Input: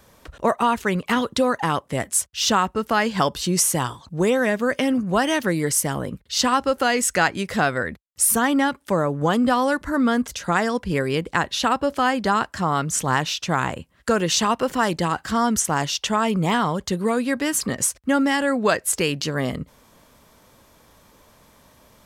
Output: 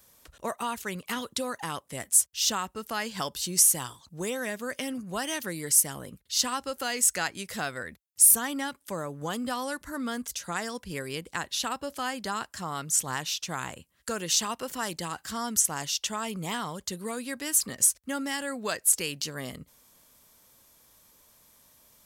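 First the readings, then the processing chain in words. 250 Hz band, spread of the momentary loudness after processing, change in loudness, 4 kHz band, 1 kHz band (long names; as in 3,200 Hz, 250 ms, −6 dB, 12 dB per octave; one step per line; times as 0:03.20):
−14.0 dB, 14 LU, −6.0 dB, −5.5 dB, −12.5 dB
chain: first-order pre-emphasis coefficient 0.8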